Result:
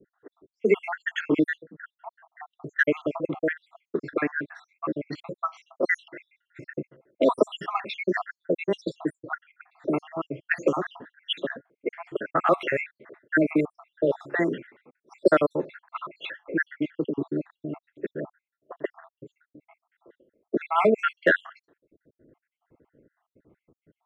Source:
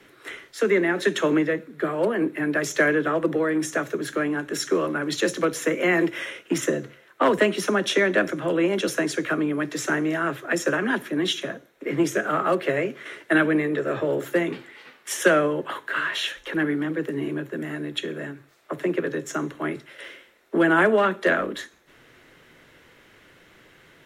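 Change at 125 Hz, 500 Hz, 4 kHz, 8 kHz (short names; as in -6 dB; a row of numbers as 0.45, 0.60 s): -6.0 dB, -3.5 dB, -8.0 dB, under -20 dB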